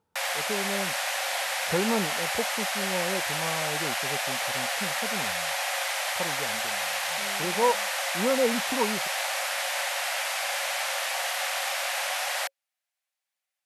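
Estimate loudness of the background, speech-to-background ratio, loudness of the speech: −27.5 LKFS, −4.5 dB, −32.0 LKFS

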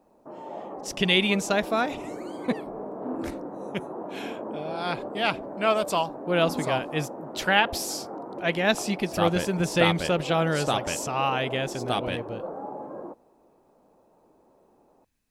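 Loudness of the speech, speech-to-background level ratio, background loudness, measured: −26.0 LKFS, 11.0 dB, −37.0 LKFS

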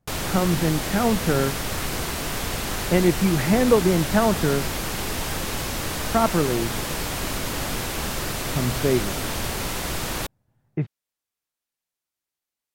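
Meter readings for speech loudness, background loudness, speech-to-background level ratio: −23.0 LKFS, −27.5 LKFS, 4.5 dB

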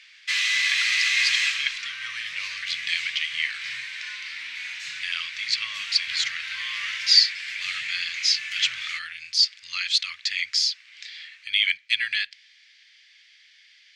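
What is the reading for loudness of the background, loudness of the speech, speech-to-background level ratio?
−27.0 LKFS, −24.5 LKFS, 2.5 dB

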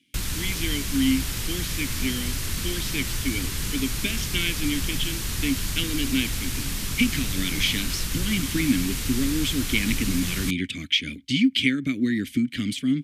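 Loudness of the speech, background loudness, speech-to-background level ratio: −26.5 LKFS, −28.5 LKFS, 2.0 dB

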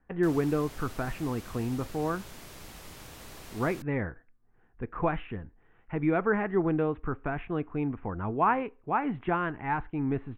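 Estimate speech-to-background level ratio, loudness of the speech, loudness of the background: 16.0 dB, −30.5 LKFS, −46.5 LKFS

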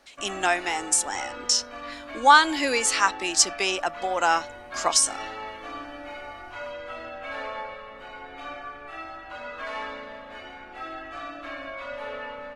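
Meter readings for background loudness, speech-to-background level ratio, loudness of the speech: −37.0 LKFS, 14.5 dB, −22.5 LKFS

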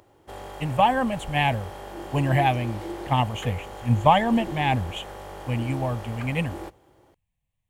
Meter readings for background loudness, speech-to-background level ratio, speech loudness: −37.5 LKFS, 13.0 dB, −24.5 LKFS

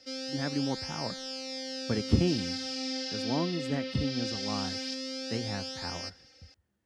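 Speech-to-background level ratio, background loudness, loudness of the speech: 1.5 dB, −35.5 LKFS, −34.0 LKFS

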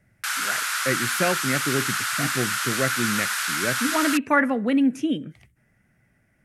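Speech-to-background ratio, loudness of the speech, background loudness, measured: −1.0 dB, −25.5 LKFS, −24.5 LKFS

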